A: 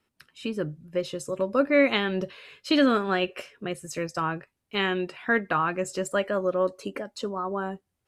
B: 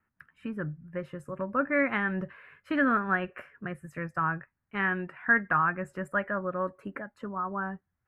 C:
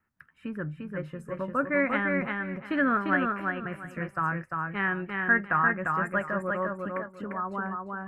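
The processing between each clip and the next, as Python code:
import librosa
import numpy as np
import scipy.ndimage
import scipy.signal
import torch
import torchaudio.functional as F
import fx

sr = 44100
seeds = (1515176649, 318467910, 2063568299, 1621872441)

y1 = fx.curve_eq(x, sr, hz=(170.0, 430.0, 1700.0, 3900.0, 6100.0, 11000.0), db=(0, -11, 4, -28, -28, -16))
y2 = fx.echo_feedback(y1, sr, ms=348, feedback_pct=24, wet_db=-3.5)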